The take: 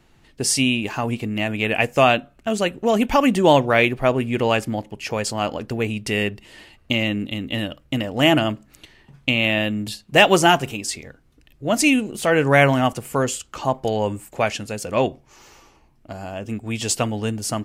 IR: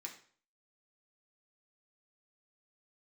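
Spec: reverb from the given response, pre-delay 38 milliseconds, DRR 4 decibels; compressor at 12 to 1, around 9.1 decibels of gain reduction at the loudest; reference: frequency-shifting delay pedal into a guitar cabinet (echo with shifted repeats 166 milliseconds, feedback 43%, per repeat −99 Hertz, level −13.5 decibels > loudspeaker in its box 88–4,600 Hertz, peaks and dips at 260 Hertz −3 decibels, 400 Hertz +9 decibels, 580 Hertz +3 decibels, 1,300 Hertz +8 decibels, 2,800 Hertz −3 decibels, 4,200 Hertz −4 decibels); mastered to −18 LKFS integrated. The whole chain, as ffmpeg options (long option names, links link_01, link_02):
-filter_complex "[0:a]acompressor=threshold=-18dB:ratio=12,asplit=2[link_01][link_02];[1:a]atrim=start_sample=2205,adelay=38[link_03];[link_02][link_03]afir=irnorm=-1:irlink=0,volume=-0.5dB[link_04];[link_01][link_04]amix=inputs=2:normalize=0,asplit=5[link_05][link_06][link_07][link_08][link_09];[link_06]adelay=166,afreqshift=-99,volume=-13.5dB[link_10];[link_07]adelay=332,afreqshift=-198,volume=-20.8dB[link_11];[link_08]adelay=498,afreqshift=-297,volume=-28.2dB[link_12];[link_09]adelay=664,afreqshift=-396,volume=-35.5dB[link_13];[link_05][link_10][link_11][link_12][link_13]amix=inputs=5:normalize=0,highpass=88,equalizer=frequency=260:width_type=q:width=4:gain=-3,equalizer=frequency=400:width_type=q:width=4:gain=9,equalizer=frequency=580:width_type=q:width=4:gain=3,equalizer=frequency=1300:width_type=q:width=4:gain=8,equalizer=frequency=2800:width_type=q:width=4:gain=-3,equalizer=frequency=4200:width_type=q:width=4:gain=-4,lowpass=frequency=4600:width=0.5412,lowpass=frequency=4600:width=1.3066,volume=4.5dB"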